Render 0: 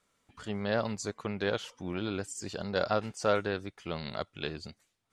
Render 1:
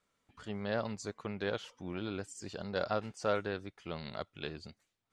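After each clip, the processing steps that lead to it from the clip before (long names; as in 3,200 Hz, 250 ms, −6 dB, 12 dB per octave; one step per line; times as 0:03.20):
high-shelf EQ 8,500 Hz −8 dB
level −4.5 dB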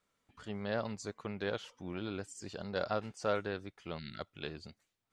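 gain on a spectral selection 0:03.99–0:04.20, 370–1,300 Hz −24 dB
level −1 dB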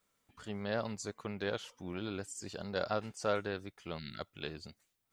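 high-shelf EQ 8,700 Hz +11.5 dB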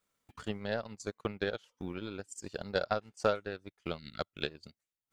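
transient designer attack +12 dB, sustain −12 dB
level −3.5 dB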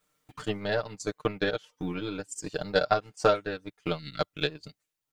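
comb filter 6.6 ms, depth 79%
level +5 dB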